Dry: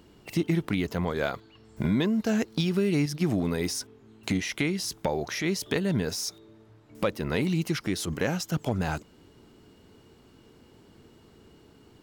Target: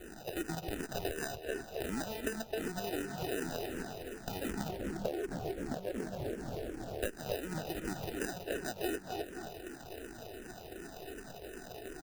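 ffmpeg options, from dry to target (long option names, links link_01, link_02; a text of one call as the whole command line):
ffmpeg -i in.wav -filter_complex "[0:a]aeval=exprs='val(0)+0.5*0.01*sgn(val(0))':channel_layout=same,asplit=3[link_01][link_02][link_03];[link_01]bandpass=frequency=730:width_type=q:width=8,volume=0dB[link_04];[link_02]bandpass=frequency=1090:width_type=q:width=8,volume=-6dB[link_05];[link_03]bandpass=frequency=2440:width_type=q:width=8,volume=-9dB[link_06];[link_04][link_05][link_06]amix=inputs=3:normalize=0,highshelf=frequency=3800:gain=5.5,acrusher=samples=40:mix=1:aa=0.000001,asettb=1/sr,asplit=3[link_07][link_08][link_09];[link_07]atrim=end=4.684[link_10];[link_08]atrim=start=4.68:end=7.02,asetpts=PTS-STARTPTS,afade=type=in:duration=0.004:curve=qsin,afade=type=out:start_time=2.336:duration=0.004:curve=qsin,tiltshelf=frequency=1500:gain=8.5[link_11];[link_09]atrim=start=7.016[link_12];[link_10][link_11]acrossfade=duration=0.004:curve1=hsin:curve2=qsin[link_13];[link_13][link_12]acrossfade=duration=0.004:curve1=qsin:curve2=hsin,asplit=2[link_14][link_15];[link_15]adelay=261,lowpass=frequency=3500:poles=1,volume=-7dB,asplit=2[link_16][link_17];[link_17]adelay=261,lowpass=frequency=3500:poles=1,volume=0.33,asplit=2[link_18][link_19];[link_19]adelay=261,lowpass=frequency=3500:poles=1,volume=0.33,asplit=2[link_20][link_21];[link_21]adelay=261,lowpass=frequency=3500:poles=1,volume=0.33[link_22];[link_14][link_16][link_18][link_20][link_22]amix=inputs=5:normalize=0,acompressor=threshold=-44dB:ratio=20,crystalizer=i=0.5:c=0,acrusher=bits=3:mode=log:mix=0:aa=0.000001,asplit=2[link_23][link_24];[link_24]afreqshift=-2.7[link_25];[link_23][link_25]amix=inputs=2:normalize=1,volume=13.5dB" out.wav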